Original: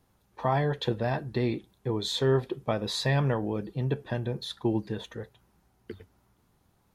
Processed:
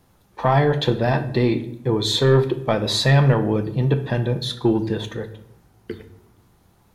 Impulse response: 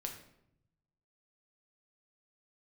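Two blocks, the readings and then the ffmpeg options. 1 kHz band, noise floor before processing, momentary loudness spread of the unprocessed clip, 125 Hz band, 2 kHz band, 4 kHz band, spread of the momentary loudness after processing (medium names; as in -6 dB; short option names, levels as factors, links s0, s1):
+8.5 dB, -69 dBFS, 17 LU, +10.5 dB, +9.5 dB, +10.0 dB, 16 LU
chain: -filter_complex "[0:a]asoftclip=type=tanh:threshold=0.158,asplit=2[s0][s1];[1:a]atrim=start_sample=2205[s2];[s1][s2]afir=irnorm=-1:irlink=0,volume=1.26[s3];[s0][s3]amix=inputs=2:normalize=0,volume=1.58"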